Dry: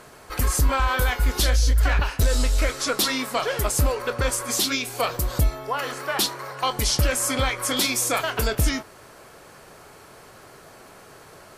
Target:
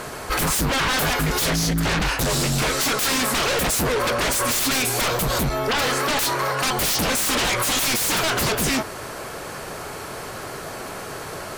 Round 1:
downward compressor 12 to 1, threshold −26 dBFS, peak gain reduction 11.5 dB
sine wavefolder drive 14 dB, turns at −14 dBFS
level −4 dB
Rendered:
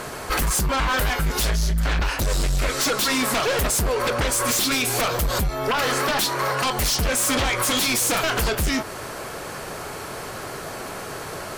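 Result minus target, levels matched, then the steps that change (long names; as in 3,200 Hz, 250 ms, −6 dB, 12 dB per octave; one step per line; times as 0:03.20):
downward compressor: peak gain reduction +5.5 dB
change: downward compressor 12 to 1, threshold −20 dBFS, peak gain reduction 6 dB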